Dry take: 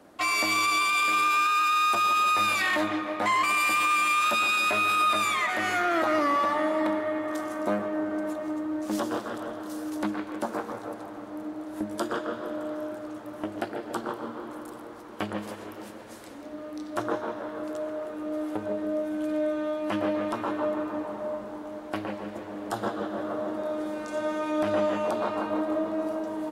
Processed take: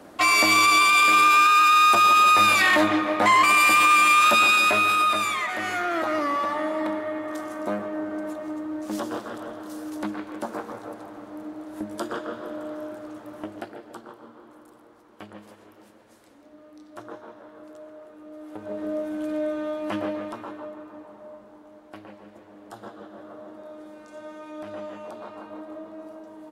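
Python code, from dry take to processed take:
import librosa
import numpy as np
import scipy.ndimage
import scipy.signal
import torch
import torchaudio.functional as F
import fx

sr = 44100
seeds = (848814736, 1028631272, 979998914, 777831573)

y = fx.gain(x, sr, db=fx.line((4.46, 7.0), (5.46, -1.0), (13.37, -1.0), (14.07, -11.0), (18.39, -11.0), (18.84, 0.0), (19.95, 0.0), (20.74, -11.0)))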